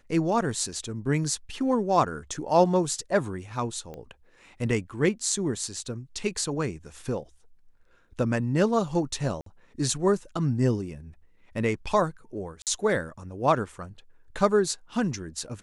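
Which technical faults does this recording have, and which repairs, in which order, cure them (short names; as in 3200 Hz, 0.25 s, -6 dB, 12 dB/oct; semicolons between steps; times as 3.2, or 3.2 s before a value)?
3.94 pop -27 dBFS
9.41–9.46 gap 53 ms
12.62–12.67 gap 48 ms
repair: de-click; interpolate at 9.41, 53 ms; interpolate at 12.62, 48 ms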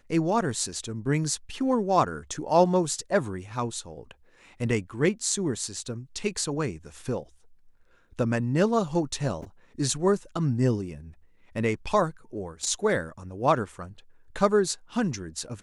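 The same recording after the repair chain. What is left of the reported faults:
none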